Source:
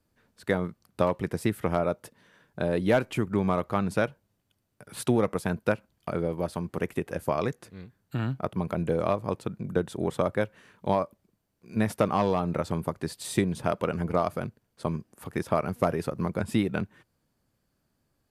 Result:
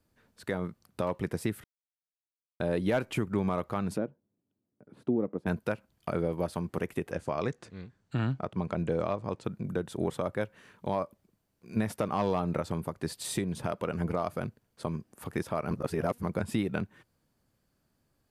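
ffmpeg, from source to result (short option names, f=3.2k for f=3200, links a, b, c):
-filter_complex "[0:a]asplit=3[a][b][c];[a]afade=t=out:st=3.96:d=0.02[d];[b]bandpass=f=280:t=q:w=1.6,afade=t=in:st=3.96:d=0.02,afade=t=out:st=5.46:d=0.02[e];[c]afade=t=in:st=5.46:d=0.02[f];[d][e][f]amix=inputs=3:normalize=0,asettb=1/sr,asplit=3[g][h][i];[g]atrim=end=7.114[j];[h]atrim=start=7.11:end=9.44,asetpts=PTS-STARTPTS,afade=t=in:d=0.004:c=qsin,afade=t=out:st=2.326:d=0.004:c=qsin,lowpass=f=8.2k:w=0.5412,lowpass=f=8.2k:w=1.3066[k];[i]atrim=start=9.436[l];[j][k]acrossfade=d=0.004:c1=hsin:c2=qsin[m];[m][l]acrossfade=d=0.004:c1=qsin:c2=hsin,asplit=5[n][o][p][q][r];[n]atrim=end=1.64,asetpts=PTS-STARTPTS,afade=t=out:st=1.636:d=0.004:c=hsin[s];[o]atrim=start=1.64:end=2.6,asetpts=PTS-STARTPTS,volume=0[t];[p]atrim=start=2.6:end=15.712,asetpts=PTS-STARTPTS,afade=t=in:d=0.004:c=hsin[u];[q]atrim=start=15.708:end=16.232,asetpts=PTS-STARTPTS,areverse[v];[r]atrim=start=16.228[w];[s][t][u]concat=n=3:v=0:a=1[x];[x][v]acrossfade=d=0.004:c1=hsin:c2=hsin[y];[y][w]acrossfade=d=0.004:c1=hsin:c2=hsin,alimiter=limit=-17.5dB:level=0:latency=1:release=262"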